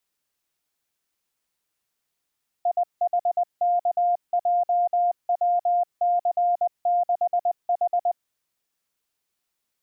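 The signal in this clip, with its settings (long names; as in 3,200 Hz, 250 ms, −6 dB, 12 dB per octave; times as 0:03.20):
Morse code "IHKJWC6H" 20 words per minute 704 Hz −18 dBFS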